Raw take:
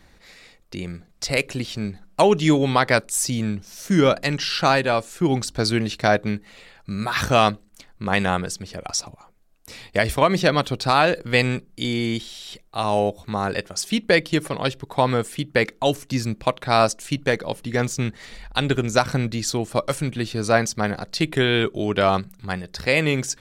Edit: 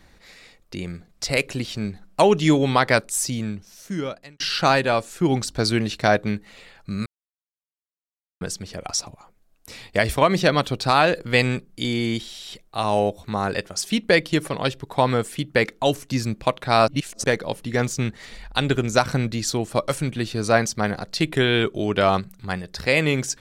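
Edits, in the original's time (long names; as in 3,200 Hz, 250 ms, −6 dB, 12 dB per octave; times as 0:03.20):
0:03.01–0:04.40: fade out
0:07.06–0:08.41: silence
0:16.88–0:17.24: reverse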